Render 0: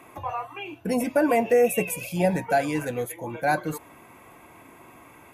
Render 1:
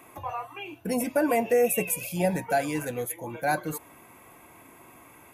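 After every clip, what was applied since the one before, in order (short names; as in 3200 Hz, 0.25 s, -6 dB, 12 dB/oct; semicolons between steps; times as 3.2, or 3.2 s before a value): high shelf 8000 Hz +9.5 dB; gain -3 dB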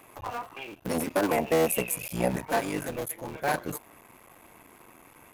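cycle switcher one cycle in 3, muted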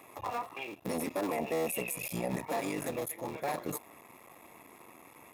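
limiter -23.5 dBFS, peak gain reduction 9.5 dB; notch comb 1500 Hz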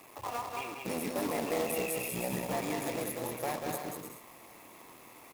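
bouncing-ball echo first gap 0.19 s, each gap 0.6×, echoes 5; companded quantiser 4-bit; gain -2 dB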